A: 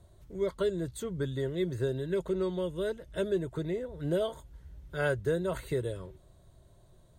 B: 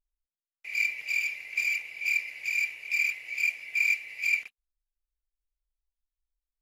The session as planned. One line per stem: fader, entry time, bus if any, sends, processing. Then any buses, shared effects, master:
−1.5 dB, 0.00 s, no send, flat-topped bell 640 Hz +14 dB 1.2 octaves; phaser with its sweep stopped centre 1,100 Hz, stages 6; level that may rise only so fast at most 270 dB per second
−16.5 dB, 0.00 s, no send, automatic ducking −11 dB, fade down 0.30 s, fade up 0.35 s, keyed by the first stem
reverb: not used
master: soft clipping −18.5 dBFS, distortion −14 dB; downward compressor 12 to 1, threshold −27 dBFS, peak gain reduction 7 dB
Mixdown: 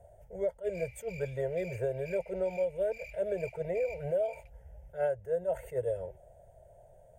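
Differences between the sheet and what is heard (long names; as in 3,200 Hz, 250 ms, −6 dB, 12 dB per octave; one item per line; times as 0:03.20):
stem B −16.5 dB → −10.0 dB
master: missing soft clipping −18.5 dBFS, distortion −14 dB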